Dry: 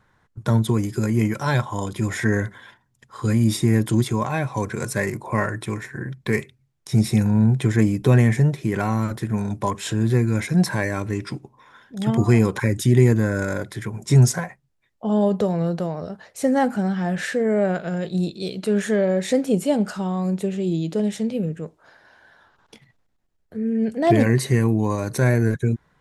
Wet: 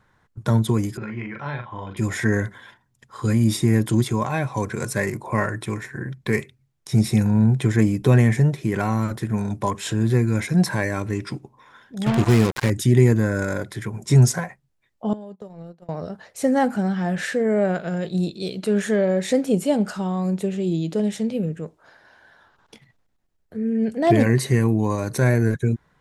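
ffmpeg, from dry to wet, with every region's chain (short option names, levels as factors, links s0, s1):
-filter_complex "[0:a]asettb=1/sr,asplit=3[s0][s1][s2];[s0]atrim=end=0.974[s3];[s1]atrim=start=0.97:end=1.97,asetpts=PTS-STARTPTS,afade=t=in:d=0.004:c=qsin,afade=t=out:st=0.996:d=0.004:c=qsin,lowpass=f=2800:w=0.5412,lowpass=f=2800:w=1.3066,acrossover=split=990|2200[s4][s5][s6];[s4]acompressor=threshold=0.0224:ratio=4[s7];[s5]acompressor=threshold=0.0112:ratio=4[s8];[s6]acompressor=threshold=0.00794:ratio=4[s9];[s7][s8][s9]amix=inputs=3:normalize=0,asplit=2[s10][s11];[s11]adelay=42,volume=0.562[s12];[s10][s12]amix=inputs=2:normalize=0,atrim=end_sample=44100[s13];[s2]atrim=start=1.966[s14];[s3][s13]acrossfade=d=0.004:c1=hsin:c2=qsin[s15];[s15][s14]acrossfade=d=0.004:c1=qsin:c2=hsin,asettb=1/sr,asplit=3[s16][s17][s18];[s16]atrim=end=12.064[s19];[s17]atrim=start=12.06:end=12.7,asetpts=PTS-STARTPTS,afade=t=in:d=0.004:c=qsin,afade=t=out:st=0.636:d=0.004:c=qsin,volume=2.37,asoftclip=hard,volume=0.422,acrusher=bits=3:mix=0:aa=0.5[s20];[s18]atrim=start=12.696[s21];[s19][s20]acrossfade=d=0.004:c1=hsin:c2=qsin[s22];[s22][s21]acrossfade=d=0.004:c1=qsin:c2=hsin,asettb=1/sr,asplit=3[s23][s24][s25];[s23]atrim=end=15.134[s26];[s24]atrim=start=15.13:end=15.89,asetpts=PTS-STARTPTS,afade=t=in:d=0.004:c=qsin,afade=t=out:st=0.756:d=0.004:c=qsin,agate=range=0.0355:threshold=0.0891:ratio=16:release=100:detection=peak,acompressor=threshold=0.0224:ratio=16:attack=3.2:release=140:knee=1:detection=peak[s27];[s25]atrim=start=15.886[s28];[s26][s27]acrossfade=d=0.004:c1=hsin:c2=qsin[s29];[s29][s28]acrossfade=d=0.004:c1=qsin:c2=hsin"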